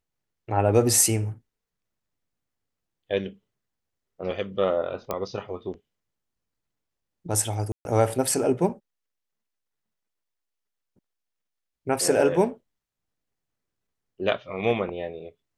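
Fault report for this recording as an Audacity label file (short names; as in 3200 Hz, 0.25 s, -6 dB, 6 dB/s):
5.110000	5.110000	pop -14 dBFS
7.720000	7.850000	gap 0.131 s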